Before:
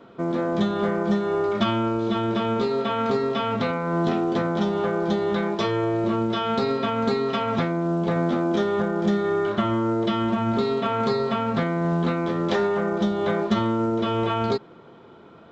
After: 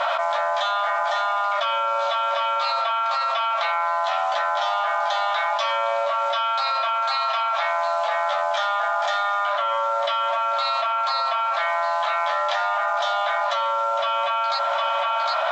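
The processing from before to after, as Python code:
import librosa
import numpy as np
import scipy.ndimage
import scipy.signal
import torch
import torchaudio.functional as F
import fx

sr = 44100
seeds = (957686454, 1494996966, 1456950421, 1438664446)

y = fx.brickwall_highpass(x, sr, low_hz=550.0)
y = fx.high_shelf(y, sr, hz=6300.0, db=-5.0)
y = fx.doubler(y, sr, ms=14.0, db=-6.5)
y = y + 10.0 ** (-18.0 / 20.0) * np.pad(y, (int(758 * sr / 1000.0), 0))[:len(y)]
y = fx.env_flatten(y, sr, amount_pct=100)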